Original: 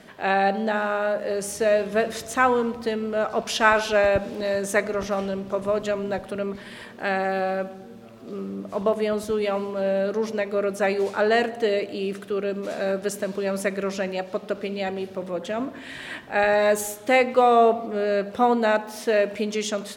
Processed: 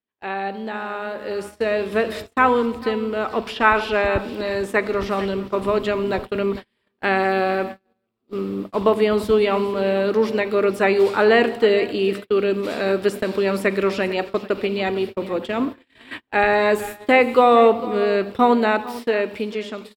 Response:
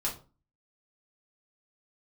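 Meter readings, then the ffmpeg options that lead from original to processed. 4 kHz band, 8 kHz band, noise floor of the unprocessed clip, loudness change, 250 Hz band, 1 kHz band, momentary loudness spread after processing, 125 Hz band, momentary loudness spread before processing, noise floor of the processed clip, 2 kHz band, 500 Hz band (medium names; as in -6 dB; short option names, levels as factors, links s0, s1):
+3.0 dB, no reading, -42 dBFS, +3.5 dB, +5.0 dB, +3.0 dB, 11 LU, +3.5 dB, 11 LU, -72 dBFS, +3.0 dB, +3.5 dB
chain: -filter_complex "[0:a]acrossover=split=2600[s0][s1];[s1]acompressor=threshold=0.01:ratio=4:attack=1:release=60[s2];[s0][s2]amix=inputs=2:normalize=0,equalizer=f=6300:w=3.7:g=-12.5,aecho=1:1:449:0.158,agate=range=0.01:threshold=0.0224:ratio=16:detection=peak,equalizer=f=160:t=o:w=0.67:g=-11,equalizer=f=630:t=o:w=0.67:g=-10,equalizer=f=1600:t=o:w=0.67:g=-5,equalizer=f=10000:t=o:w=0.67:g=-7,dynaudnorm=f=220:g=13:m=3.76"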